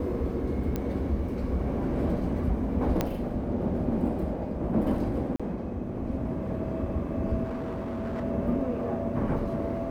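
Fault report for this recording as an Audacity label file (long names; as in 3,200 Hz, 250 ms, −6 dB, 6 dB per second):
0.760000	0.760000	click −17 dBFS
3.010000	3.010000	click −12 dBFS
5.360000	5.400000	drop-out 36 ms
7.430000	8.240000	clipping −29.5 dBFS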